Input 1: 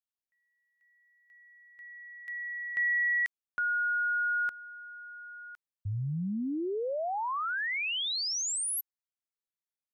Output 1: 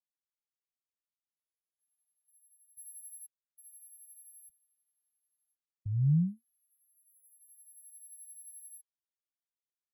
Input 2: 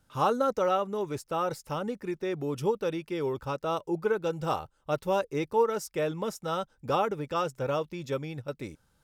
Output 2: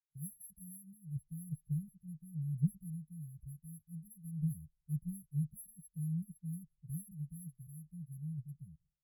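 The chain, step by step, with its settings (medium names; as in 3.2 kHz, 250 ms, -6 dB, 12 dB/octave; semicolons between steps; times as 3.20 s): sorted samples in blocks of 8 samples; expander -57 dBFS; bass shelf 89 Hz -8.5 dB; flange 0.26 Hz, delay 3.9 ms, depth 2 ms, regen -16%; brick-wall FIR band-stop 180–11000 Hz; distance through air 69 m; three bands expanded up and down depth 70%; trim +7 dB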